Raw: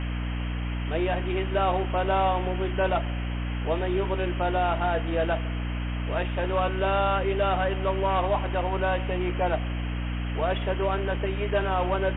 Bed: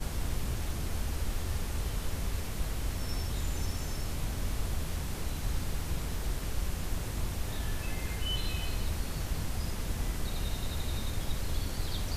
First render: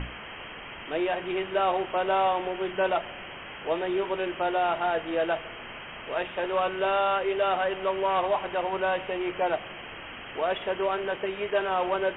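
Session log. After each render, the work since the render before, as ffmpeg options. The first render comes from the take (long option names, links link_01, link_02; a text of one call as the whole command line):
ffmpeg -i in.wav -af "bandreject=frequency=60:width_type=h:width=6,bandreject=frequency=120:width_type=h:width=6,bandreject=frequency=180:width_type=h:width=6,bandreject=frequency=240:width_type=h:width=6,bandreject=frequency=300:width_type=h:width=6" out.wav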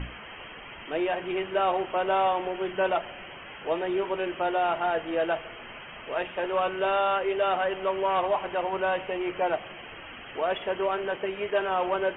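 ffmpeg -i in.wav -af "afftdn=noise_reduction=8:noise_floor=-42" out.wav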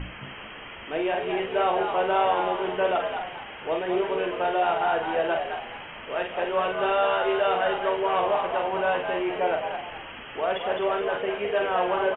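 ffmpeg -i in.wav -filter_complex "[0:a]asplit=2[link_01][link_02];[link_02]adelay=44,volume=-5dB[link_03];[link_01][link_03]amix=inputs=2:normalize=0,asplit=2[link_04][link_05];[link_05]asplit=4[link_06][link_07][link_08][link_09];[link_06]adelay=211,afreqshift=76,volume=-6.5dB[link_10];[link_07]adelay=422,afreqshift=152,volume=-16.7dB[link_11];[link_08]adelay=633,afreqshift=228,volume=-26.8dB[link_12];[link_09]adelay=844,afreqshift=304,volume=-37dB[link_13];[link_10][link_11][link_12][link_13]amix=inputs=4:normalize=0[link_14];[link_04][link_14]amix=inputs=2:normalize=0" out.wav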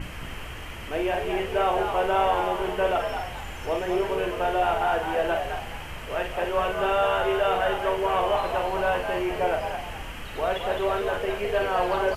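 ffmpeg -i in.wav -i bed.wav -filter_complex "[1:a]volume=-6.5dB[link_01];[0:a][link_01]amix=inputs=2:normalize=0" out.wav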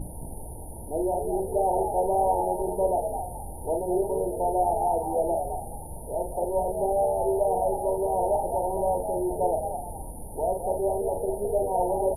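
ffmpeg -i in.wav -af "afftfilt=real='re*(1-between(b*sr/4096,950,9000))':imag='im*(1-between(b*sr/4096,950,9000))':win_size=4096:overlap=0.75,equalizer=frequency=10000:width=2.3:gain=14" out.wav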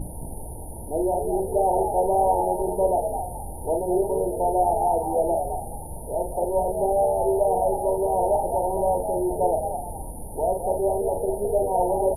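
ffmpeg -i in.wav -af "volume=3dB" out.wav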